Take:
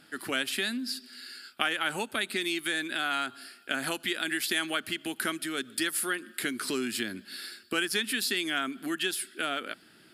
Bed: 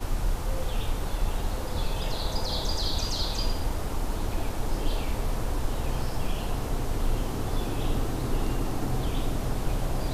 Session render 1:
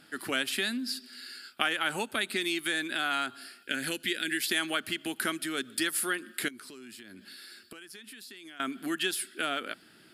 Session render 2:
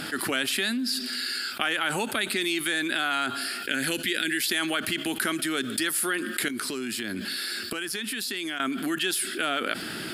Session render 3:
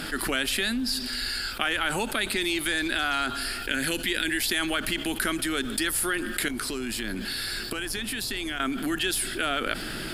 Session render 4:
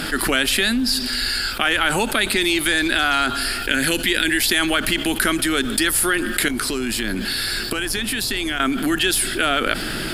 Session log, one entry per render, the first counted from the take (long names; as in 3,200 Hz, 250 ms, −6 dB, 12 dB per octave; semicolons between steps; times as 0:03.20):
0:03.63–0:04.47: flat-topped bell 900 Hz −12.5 dB 1.2 octaves; 0:06.48–0:08.60: downward compressor 10 to 1, threshold −44 dBFS
envelope flattener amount 70%
mix in bed −15.5 dB
level +8 dB; brickwall limiter −2 dBFS, peak gain reduction 2 dB